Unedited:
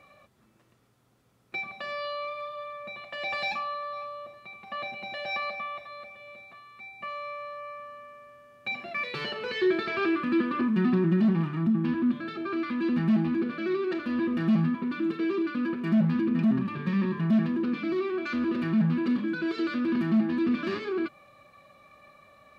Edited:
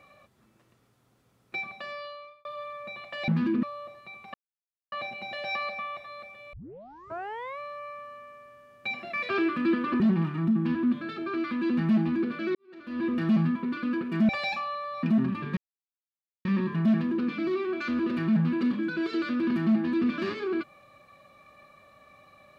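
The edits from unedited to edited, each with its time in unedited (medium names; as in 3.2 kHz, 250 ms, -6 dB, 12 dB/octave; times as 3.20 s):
1.64–2.45 s: fade out
3.28–4.02 s: swap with 16.01–16.36 s
4.73 s: insert silence 0.58 s
6.34 s: tape start 1.06 s
9.10–9.96 s: delete
10.67–11.19 s: delete
13.74–14.27 s: fade in quadratic
14.96–15.49 s: delete
16.90 s: insert silence 0.88 s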